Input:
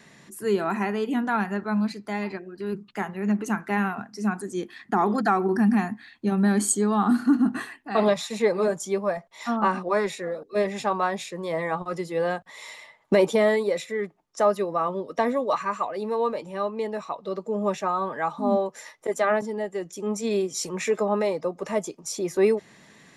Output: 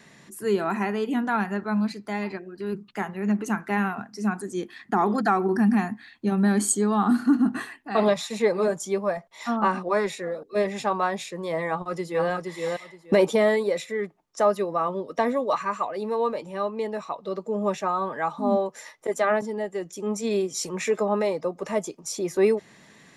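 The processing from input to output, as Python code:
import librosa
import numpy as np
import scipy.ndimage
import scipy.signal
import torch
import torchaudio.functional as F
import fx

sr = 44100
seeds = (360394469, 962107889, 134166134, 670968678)

y = fx.echo_throw(x, sr, start_s=11.67, length_s=0.62, ms=470, feedback_pct=20, wet_db=-3.5)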